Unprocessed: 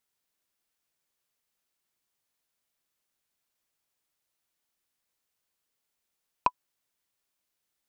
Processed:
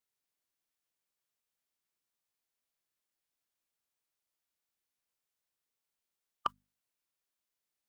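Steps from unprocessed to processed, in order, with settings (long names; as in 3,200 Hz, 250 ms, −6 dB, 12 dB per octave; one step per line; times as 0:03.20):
formants moved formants +3 semitones
mains-hum notches 50/100/150/200/250 Hz
level −7 dB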